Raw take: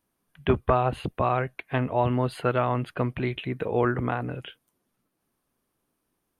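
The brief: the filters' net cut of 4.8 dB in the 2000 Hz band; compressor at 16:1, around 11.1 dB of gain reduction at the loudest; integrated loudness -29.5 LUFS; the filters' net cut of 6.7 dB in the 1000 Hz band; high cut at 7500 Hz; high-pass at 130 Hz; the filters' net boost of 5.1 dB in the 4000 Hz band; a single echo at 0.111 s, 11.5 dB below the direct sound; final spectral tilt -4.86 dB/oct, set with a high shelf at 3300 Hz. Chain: HPF 130 Hz; LPF 7500 Hz; bell 1000 Hz -8.5 dB; bell 2000 Hz -7.5 dB; high shelf 3300 Hz +4 dB; bell 4000 Hz +9 dB; compressor 16:1, threshold -29 dBFS; echo 0.111 s -11.5 dB; gain +6 dB

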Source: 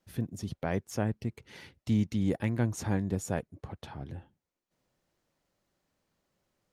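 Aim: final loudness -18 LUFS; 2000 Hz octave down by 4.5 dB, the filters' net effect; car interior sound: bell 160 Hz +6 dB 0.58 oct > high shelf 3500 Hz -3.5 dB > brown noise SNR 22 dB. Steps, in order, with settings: bell 160 Hz +6 dB 0.58 oct; bell 2000 Hz -5 dB; high shelf 3500 Hz -3.5 dB; brown noise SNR 22 dB; gain +13.5 dB

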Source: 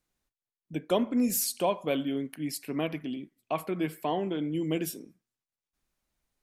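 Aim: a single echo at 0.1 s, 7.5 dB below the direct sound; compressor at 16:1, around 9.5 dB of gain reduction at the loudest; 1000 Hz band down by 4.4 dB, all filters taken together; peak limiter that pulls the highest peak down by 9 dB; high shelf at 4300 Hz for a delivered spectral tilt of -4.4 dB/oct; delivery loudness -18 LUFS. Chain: bell 1000 Hz -6.5 dB; high shelf 4300 Hz +5 dB; compressor 16:1, threshold -31 dBFS; limiter -30 dBFS; echo 0.1 s -7.5 dB; gain +21 dB

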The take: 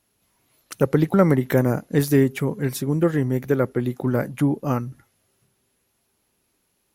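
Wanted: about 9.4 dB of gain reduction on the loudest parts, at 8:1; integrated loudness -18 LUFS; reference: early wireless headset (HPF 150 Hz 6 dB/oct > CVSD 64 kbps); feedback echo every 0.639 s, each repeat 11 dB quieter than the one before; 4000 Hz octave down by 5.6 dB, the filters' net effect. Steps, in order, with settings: bell 4000 Hz -7.5 dB; compressor 8:1, threshold -22 dBFS; HPF 150 Hz 6 dB/oct; feedback echo 0.639 s, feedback 28%, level -11 dB; CVSD 64 kbps; gain +12 dB

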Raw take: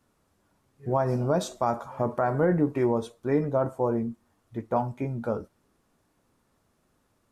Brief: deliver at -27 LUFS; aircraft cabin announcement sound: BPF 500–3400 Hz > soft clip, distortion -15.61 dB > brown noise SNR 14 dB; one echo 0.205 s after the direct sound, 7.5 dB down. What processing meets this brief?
BPF 500–3400 Hz; echo 0.205 s -7.5 dB; soft clip -20.5 dBFS; brown noise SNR 14 dB; gain +5.5 dB

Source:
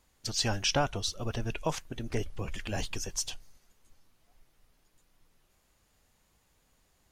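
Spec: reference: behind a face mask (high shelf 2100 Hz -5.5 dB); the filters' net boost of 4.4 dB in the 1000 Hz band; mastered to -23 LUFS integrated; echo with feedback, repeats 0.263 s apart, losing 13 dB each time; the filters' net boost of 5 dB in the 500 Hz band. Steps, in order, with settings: bell 500 Hz +5 dB; bell 1000 Hz +5 dB; high shelf 2100 Hz -5.5 dB; feedback echo 0.263 s, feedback 22%, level -13 dB; gain +9.5 dB

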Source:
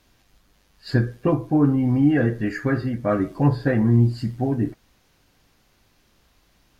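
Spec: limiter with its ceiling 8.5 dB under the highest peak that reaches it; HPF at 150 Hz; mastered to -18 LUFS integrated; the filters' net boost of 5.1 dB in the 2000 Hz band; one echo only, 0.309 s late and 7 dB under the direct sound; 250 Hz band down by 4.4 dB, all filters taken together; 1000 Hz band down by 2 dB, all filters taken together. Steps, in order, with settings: HPF 150 Hz; bell 250 Hz -4.5 dB; bell 1000 Hz -4.5 dB; bell 2000 Hz +8 dB; limiter -17.5 dBFS; echo 0.309 s -7 dB; gain +9 dB

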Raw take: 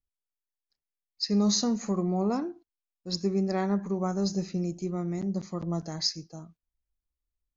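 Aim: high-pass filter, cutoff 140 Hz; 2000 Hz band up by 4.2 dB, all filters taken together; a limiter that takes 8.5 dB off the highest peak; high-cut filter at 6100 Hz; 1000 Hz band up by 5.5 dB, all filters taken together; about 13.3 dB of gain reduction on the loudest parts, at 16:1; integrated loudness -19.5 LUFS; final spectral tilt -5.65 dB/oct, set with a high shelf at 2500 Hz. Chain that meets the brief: HPF 140 Hz; LPF 6100 Hz; bell 1000 Hz +7.5 dB; bell 2000 Hz +4 dB; high shelf 2500 Hz -3.5 dB; compressor 16:1, threshold -34 dBFS; gain +23 dB; limiter -10 dBFS

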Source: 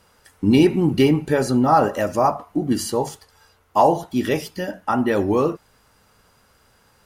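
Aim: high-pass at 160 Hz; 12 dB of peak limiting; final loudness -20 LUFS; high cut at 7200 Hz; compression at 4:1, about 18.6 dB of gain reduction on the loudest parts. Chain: HPF 160 Hz; LPF 7200 Hz; compressor 4:1, threshold -34 dBFS; gain +22 dB; limiter -10.5 dBFS

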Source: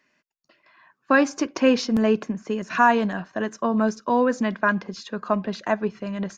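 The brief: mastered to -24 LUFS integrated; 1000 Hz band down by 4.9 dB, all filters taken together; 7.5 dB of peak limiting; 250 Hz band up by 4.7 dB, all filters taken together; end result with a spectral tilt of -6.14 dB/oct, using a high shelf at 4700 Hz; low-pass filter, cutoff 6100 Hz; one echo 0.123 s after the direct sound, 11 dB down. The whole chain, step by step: LPF 6100 Hz; bell 250 Hz +5.5 dB; bell 1000 Hz -6 dB; high shelf 4700 Hz -8.5 dB; limiter -12 dBFS; echo 0.123 s -11 dB; gain -1 dB

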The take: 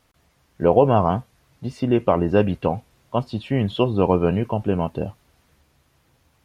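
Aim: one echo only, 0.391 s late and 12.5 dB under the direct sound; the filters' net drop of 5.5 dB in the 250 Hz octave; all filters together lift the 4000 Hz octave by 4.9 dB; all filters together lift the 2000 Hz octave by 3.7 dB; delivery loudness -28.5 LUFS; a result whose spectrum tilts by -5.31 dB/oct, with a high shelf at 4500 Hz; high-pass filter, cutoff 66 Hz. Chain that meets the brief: HPF 66 Hz; bell 250 Hz -8 dB; bell 2000 Hz +3 dB; bell 4000 Hz +3 dB; high shelf 4500 Hz +5.5 dB; echo 0.391 s -12.5 dB; gain -5.5 dB

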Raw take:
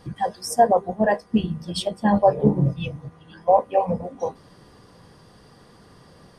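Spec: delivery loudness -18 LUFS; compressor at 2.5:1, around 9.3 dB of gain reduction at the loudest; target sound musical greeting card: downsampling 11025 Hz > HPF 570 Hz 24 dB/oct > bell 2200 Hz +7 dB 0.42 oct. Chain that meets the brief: compressor 2.5:1, threshold -25 dBFS; downsampling 11025 Hz; HPF 570 Hz 24 dB/oct; bell 2200 Hz +7 dB 0.42 oct; gain +14 dB

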